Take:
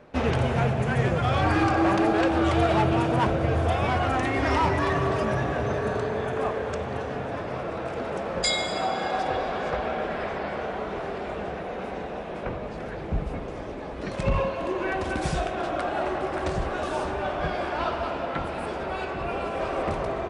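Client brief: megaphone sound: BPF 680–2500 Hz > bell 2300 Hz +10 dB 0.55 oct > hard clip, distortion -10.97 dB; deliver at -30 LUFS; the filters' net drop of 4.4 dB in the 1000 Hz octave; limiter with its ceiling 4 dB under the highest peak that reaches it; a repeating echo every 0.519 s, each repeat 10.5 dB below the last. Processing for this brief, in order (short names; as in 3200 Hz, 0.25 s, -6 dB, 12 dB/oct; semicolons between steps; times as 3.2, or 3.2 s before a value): bell 1000 Hz -4.5 dB; limiter -17 dBFS; BPF 680–2500 Hz; bell 2300 Hz +10 dB 0.55 oct; feedback echo 0.519 s, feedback 30%, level -10.5 dB; hard clip -29 dBFS; gain +3 dB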